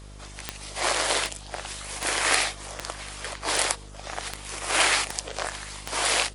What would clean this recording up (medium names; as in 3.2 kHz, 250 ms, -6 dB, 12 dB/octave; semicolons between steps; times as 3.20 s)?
de-click; de-hum 50.3 Hz, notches 13; expander -34 dBFS, range -21 dB; inverse comb 741 ms -21.5 dB